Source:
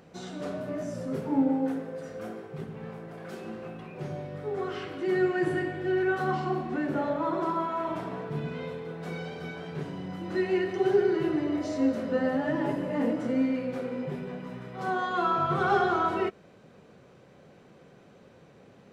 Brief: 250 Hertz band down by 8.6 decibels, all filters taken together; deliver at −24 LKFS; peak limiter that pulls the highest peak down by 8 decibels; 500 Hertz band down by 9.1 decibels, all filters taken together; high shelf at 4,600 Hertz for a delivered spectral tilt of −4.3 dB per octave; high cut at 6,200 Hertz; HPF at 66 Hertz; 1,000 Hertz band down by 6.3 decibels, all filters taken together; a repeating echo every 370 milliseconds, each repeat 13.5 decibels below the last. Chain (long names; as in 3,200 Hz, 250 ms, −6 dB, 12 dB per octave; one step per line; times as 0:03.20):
high-pass filter 66 Hz
low-pass filter 6,200 Hz
parametric band 250 Hz −7.5 dB
parametric band 500 Hz −8.5 dB
parametric band 1,000 Hz −6 dB
high-shelf EQ 4,600 Hz +8 dB
brickwall limiter −27.5 dBFS
repeating echo 370 ms, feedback 21%, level −13.5 dB
level +14.5 dB